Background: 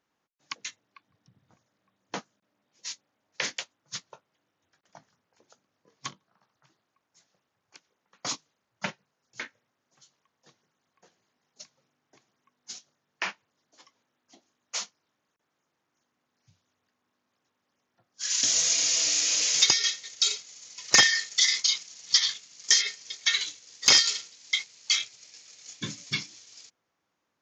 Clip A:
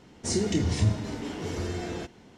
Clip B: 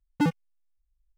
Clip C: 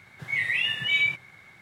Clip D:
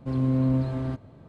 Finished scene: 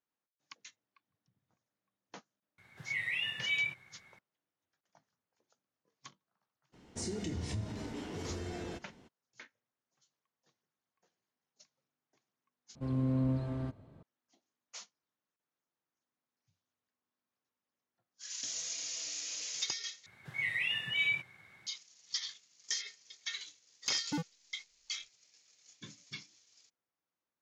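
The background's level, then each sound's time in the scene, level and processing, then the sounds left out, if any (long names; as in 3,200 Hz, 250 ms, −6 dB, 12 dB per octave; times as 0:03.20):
background −15.5 dB
0:02.58: mix in C −9.5 dB
0:06.72: mix in A −7 dB, fades 0.02 s + downward compressor 2.5 to 1, threshold −29 dBFS
0:12.75: overwrite with D −8 dB
0:20.06: overwrite with C −8 dB + high-pass filter 54 Hz
0:23.92: mix in B −12.5 dB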